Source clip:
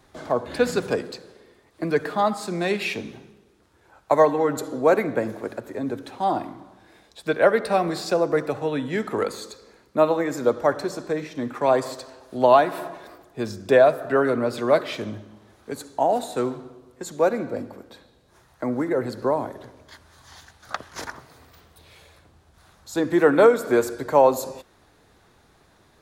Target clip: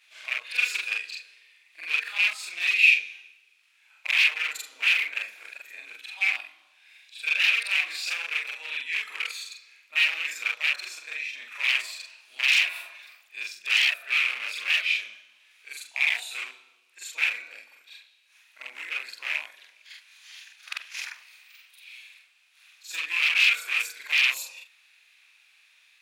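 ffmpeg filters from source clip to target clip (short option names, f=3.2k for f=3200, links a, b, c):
-af "afftfilt=real='re':imag='-im':win_size=4096:overlap=0.75,aeval=exprs='0.0596*(abs(mod(val(0)/0.0596+3,4)-2)-1)':c=same,highpass=f=2.5k:t=q:w=7.2,volume=2.5dB"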